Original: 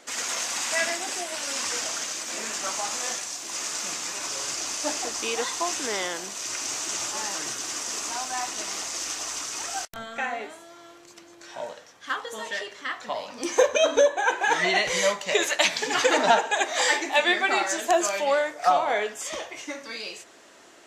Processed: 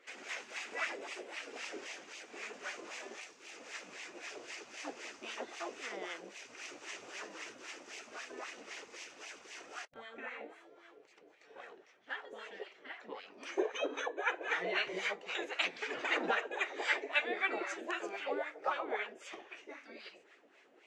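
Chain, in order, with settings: wah 3.8 Hz 380–1600 Hz, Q 5; spectral gate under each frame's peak -10 dB weak; fifteen-band EQ 400 Hz +7 dB, 1000 Hz -6 dB, 2500 Hz +6 dB; gain +5.5 dB

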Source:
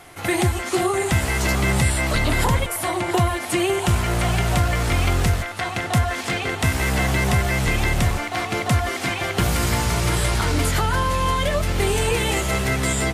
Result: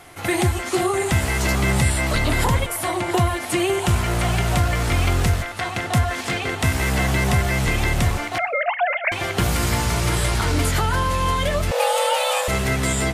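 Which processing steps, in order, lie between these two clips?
8.38–9.12 sine-wave speech; two-slope reverb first 0.63 s, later 2.3 s, from -28 dB, DRR 20 dB; 11.71–12.48 frequency shift +440 Hz

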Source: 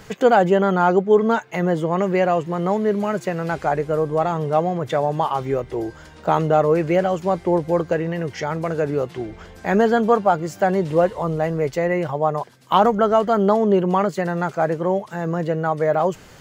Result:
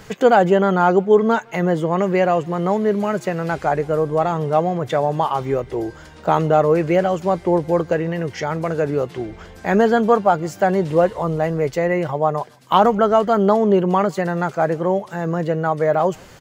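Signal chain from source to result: speakerphone echo 0.16 s, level -29 dB; gain +1.5 dB

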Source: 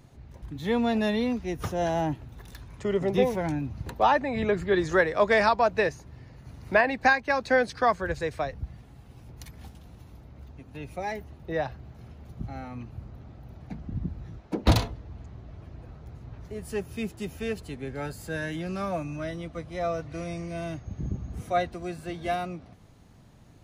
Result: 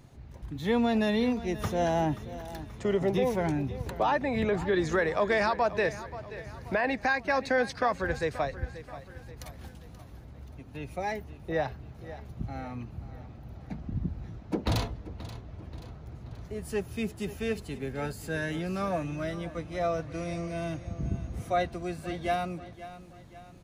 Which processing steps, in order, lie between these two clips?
limiter -17.5 dBFS, peak gain reduction 10.5 dB; on a send: feedback echo 0.531 s, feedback 47%, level -15 dB

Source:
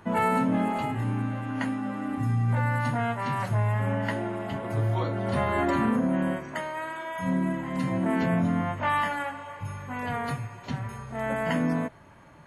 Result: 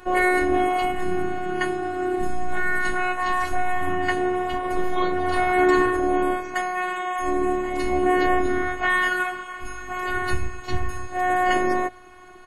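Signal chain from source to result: 10.14–11.07 octaver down 2 oct, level +2 dB; comb 6.3 ms, depth 92%; robotiser 365 Hz; gain +7 dB

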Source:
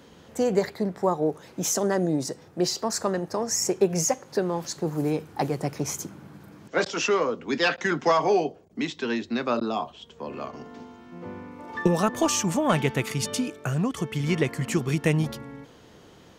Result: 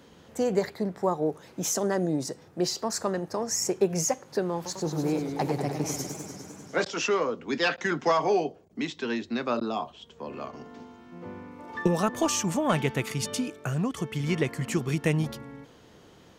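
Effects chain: 4.55–6.83 warbling echo 0.1 s, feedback 77%, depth 148 cents, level -7 dB; gain -2.5 dB

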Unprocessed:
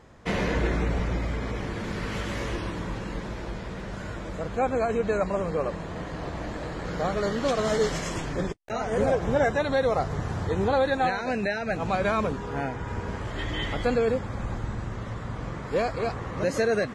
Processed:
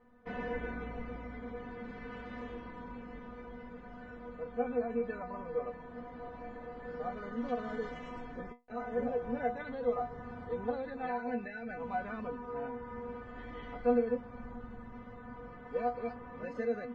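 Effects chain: LPF 1800 Hz 12 dB/oct; metallic resonator 240 Hz, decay 0.21 s, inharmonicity 0.002; gain +1.5 dB

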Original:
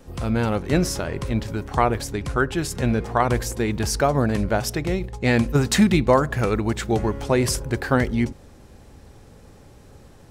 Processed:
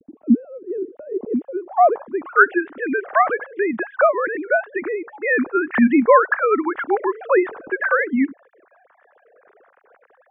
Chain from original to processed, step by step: sine-wave speech; low-pass sweep 270 Hz -> 1600 Hz, 0.89–2.49

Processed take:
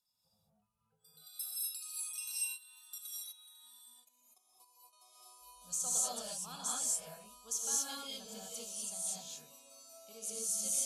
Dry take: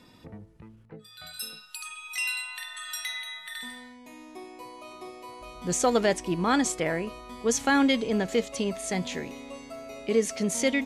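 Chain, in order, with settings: pre-emphasis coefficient 0.9; spectral noise reduction 12 dB; high shelf 6500 Hz +4 dB; 2.32–4.93 level quantiser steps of 18 dB; fixed phaser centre 820 Hz, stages 4; non-linear reverb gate 0.27 s rising, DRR -6.5 dB; gain -8.5 dB

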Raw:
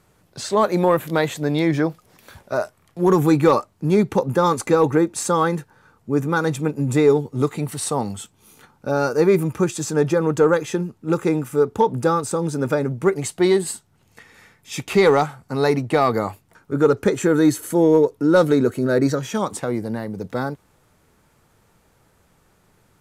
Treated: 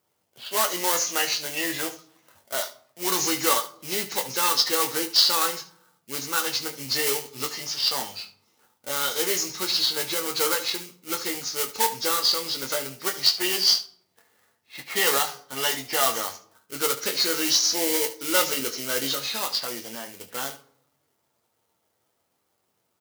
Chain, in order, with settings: nonlinear frequency compression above 1500 Hz 1.5:1; low-pass opened by the level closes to 680 Hz, open at -17 dBFS; high shelf 3100 Hz +10.5 dB; in parallel at -8.5 dB: sample-rate reducer 2600 Hz, jitter 20%; on the sum: differentiator; early reflections 22 ms -8 dB, 73 ms -14.5 dB; on a send at -6.5 dB: reverb, pre-delay 8 ms; on the sum: gain +7 dB

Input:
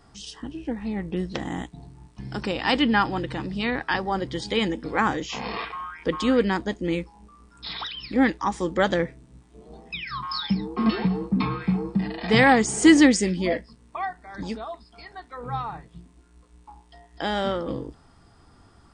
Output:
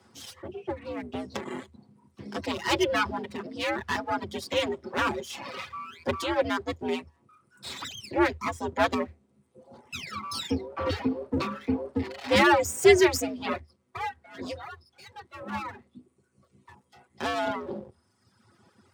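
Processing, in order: minimum comb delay 6.6 ms; frequency shift +76 Hz; reverb removal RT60 1.2 s; gain -2 dB

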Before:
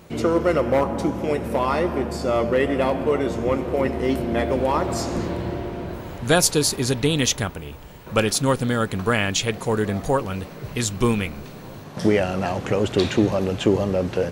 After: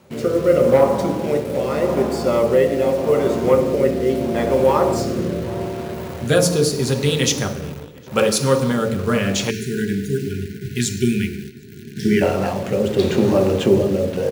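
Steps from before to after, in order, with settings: on a send at -2.5 dB: reverb RT60 1.0 s, pre-delay 3 ms; on the sum: rotary speaker horn 0.8 Hz; in parallel at -8 dB: bit-crush 5-bit; on the sum: HPF 140 Hz 6 dB/oct; outdoor echo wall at 130 m, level -24 dB; spectral delete 9.5–12.22, 440–1400 Hz; gain -1 dB

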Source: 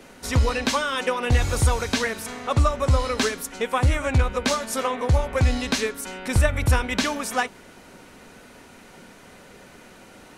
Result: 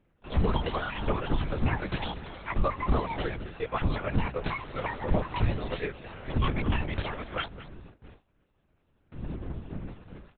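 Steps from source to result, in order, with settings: trilling pitch shifter +10.5 st, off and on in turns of 0.18 s; wind noise 190 Hz -32 dBFS; high shelf 2500 Hz -5.5 dB; echo 0.215 s -16.5 dB; gate with hold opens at -31 dBFS; LPC vocoder at 8 kHz whisper; gain -6.5 dB

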